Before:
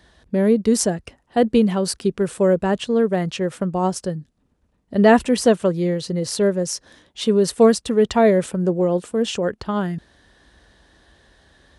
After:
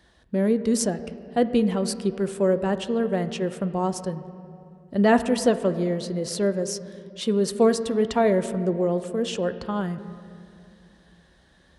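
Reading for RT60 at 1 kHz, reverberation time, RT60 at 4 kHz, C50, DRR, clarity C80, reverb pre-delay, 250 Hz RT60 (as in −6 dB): 2.4 s, 2.6 s, 1.7 s, 12.5 dB, 10.0 dB, 13.5 dB, 4 ms, 3.3 s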